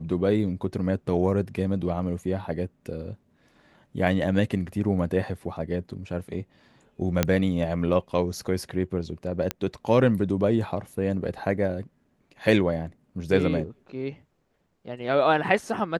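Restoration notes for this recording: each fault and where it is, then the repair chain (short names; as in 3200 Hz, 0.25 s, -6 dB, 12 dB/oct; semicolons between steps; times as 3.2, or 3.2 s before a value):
7.23 pop -6 dBFS
9.51 pop -10 dBFS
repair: de-click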